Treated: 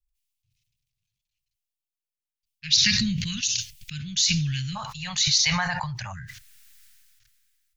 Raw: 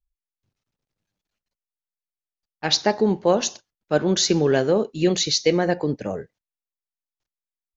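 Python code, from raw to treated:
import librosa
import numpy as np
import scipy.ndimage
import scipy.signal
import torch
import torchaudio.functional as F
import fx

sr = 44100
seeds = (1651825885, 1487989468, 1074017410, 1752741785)

y = fx.ellip_bandstop(x, sr, low_hz=130.0, high_hz=fx.steps((0.0, 2500.0), (4.75, 920.0), (6.12, 1600.0)), order=3, stop_db=60)
y = fx.sustainer(y, sr, db_per_s=23.0)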